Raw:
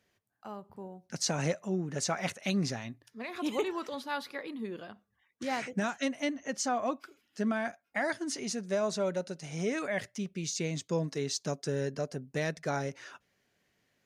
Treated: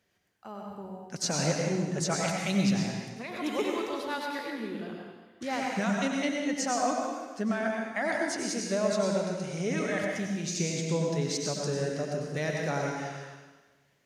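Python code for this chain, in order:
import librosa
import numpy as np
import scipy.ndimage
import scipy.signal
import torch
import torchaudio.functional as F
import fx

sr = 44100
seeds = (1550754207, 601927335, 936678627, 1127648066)

y = fx.rev_plate(x, sr, seeds[0], rt60_s=1.3, hf_ratio=1.0, predelay_ms=80, drr_db=-0.5)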